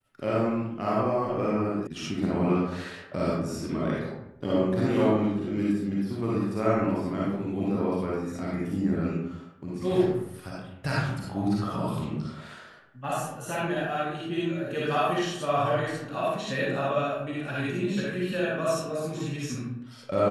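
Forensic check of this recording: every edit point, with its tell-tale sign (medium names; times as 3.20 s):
1.87 s: sound stops dead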